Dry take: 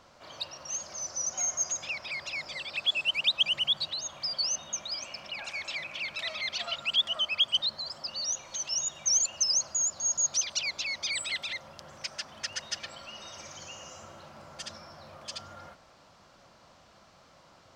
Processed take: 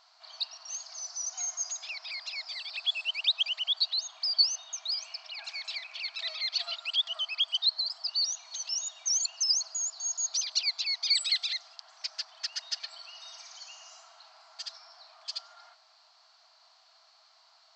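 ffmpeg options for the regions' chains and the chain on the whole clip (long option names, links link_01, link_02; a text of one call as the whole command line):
ffmpeg -i in.wav -filter_complex "[0:a]asettb=1/sr,asplit=3[link_01][link_02][link_03];[link_01]atrim=end=11.104[link_04];[link_02]atrim=start=11.1:end=11.76,asetpts=PTS-STARTPTS,afade=type=in:duration=0.004:curve=qsin,afade=type=out:start_time=0.656:duration=0.004:curve=qsin,equalizer=frequency=6200:width=0.72:gain=7,bandreject=frequency=950:width=8.1[link_05];[link_03]atrim=start=11.756[link_06];[link_04][link_05]acrossfade=duration=0.004:curve1=hsin:curve2=qsin[link_07];[link_07][link_06]acrossfade=duration=0.004:curve1=qsin:curve2=hsin,afftfilt=real='re*between(b*sr/4096,620,8200)':imag='im*between(b*sr/4096,620,8200)':win_size=4096:overlap=0.75,equalizer=frequency=4400:width=2.9:gain=14.5,volume=-6.5dB" out.wav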